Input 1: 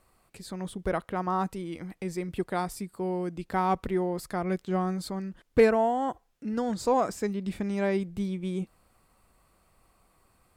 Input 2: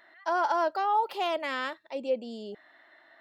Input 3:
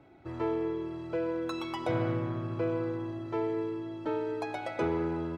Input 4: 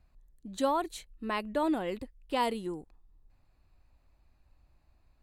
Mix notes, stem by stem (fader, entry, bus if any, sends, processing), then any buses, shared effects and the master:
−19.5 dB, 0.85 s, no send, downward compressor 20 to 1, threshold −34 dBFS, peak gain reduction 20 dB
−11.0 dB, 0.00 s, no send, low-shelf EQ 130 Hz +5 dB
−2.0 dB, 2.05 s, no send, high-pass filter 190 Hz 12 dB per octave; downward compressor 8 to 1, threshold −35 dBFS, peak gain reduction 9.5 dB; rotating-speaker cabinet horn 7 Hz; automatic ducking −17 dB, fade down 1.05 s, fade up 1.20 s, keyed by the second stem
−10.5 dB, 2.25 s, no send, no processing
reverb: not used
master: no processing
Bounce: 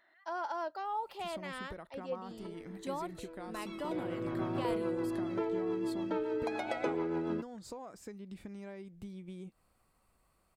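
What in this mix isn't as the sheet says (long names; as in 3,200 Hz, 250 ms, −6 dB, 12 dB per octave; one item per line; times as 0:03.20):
stem 1 −19.5 dB → −8.0 dB
stem 3 −2.0 dB → +6.0 dB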